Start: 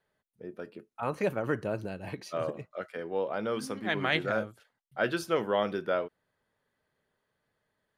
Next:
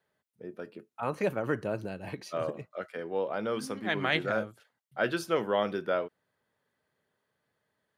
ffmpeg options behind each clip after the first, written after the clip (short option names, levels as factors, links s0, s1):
-af "highpass=82"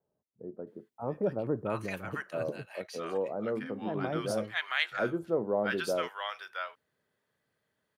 -filter_complex "[0:a]acrossover=split=910[s0][s1];[s1]adelay=670[s2];[s0][s2]amix=inputs=2:normalize=0"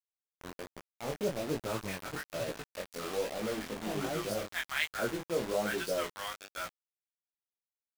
-af "aeval=exprs='val(0)+0.00112*(sin(2*PI*50*n/s)+sin(2*PI*2*50*n/s)/2+sin(2*PI*3*50*n/s)/3+sin(2*PI*4*50*n/s)/4+sin(2*PI*5*50*n/s)/5)':c=same,acrusher=bits=5:mix=0:aa=0.000001,flanger=delay=17:depth=6.7:speed=1.2"